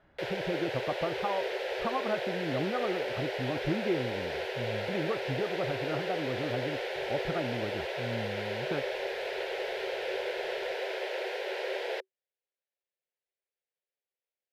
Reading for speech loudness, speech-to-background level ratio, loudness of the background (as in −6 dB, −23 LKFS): −36.5 LKFS, −2.0 dB, −34.5 LKFS